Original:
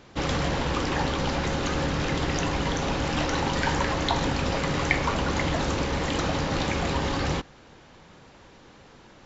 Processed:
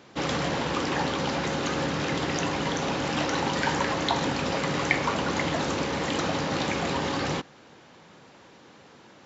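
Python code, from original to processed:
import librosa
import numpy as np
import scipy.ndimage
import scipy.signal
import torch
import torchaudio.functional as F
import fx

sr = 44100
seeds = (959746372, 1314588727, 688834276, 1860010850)

y = scipy.signal.sosfilt(scipy.signal.butter(2, 140.0, 'highpass', fs=sr, output='sos'), x)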